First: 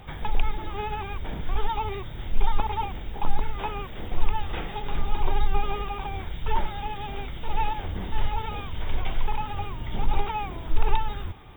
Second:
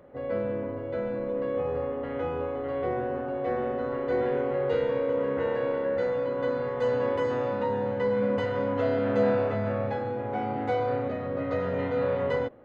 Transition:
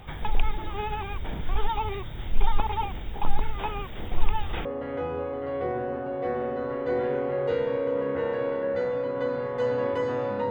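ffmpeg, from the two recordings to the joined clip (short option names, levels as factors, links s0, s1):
-filter_complex "[0:a]apad=whole_dur=10.5,atrim=end=10.5,atrim=end=4.652[s0];[1:a]atrim=start=1.868:end=7.72[s1];[s0][s1]acrossfade=d=0.004:c1=hsin:c2=hsin"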